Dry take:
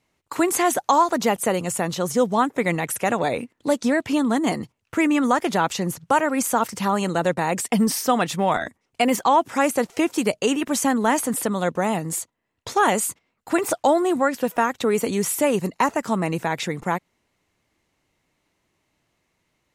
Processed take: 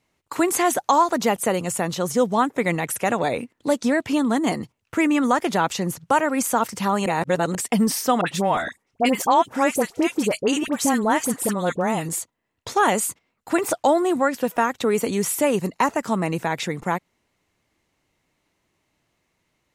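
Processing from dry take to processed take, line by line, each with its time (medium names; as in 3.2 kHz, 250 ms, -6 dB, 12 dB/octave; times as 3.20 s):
7.06–7.55 s: reverse
8.21–12.09 s: phase dispersion highs, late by 59 ms, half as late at 1.3 kHz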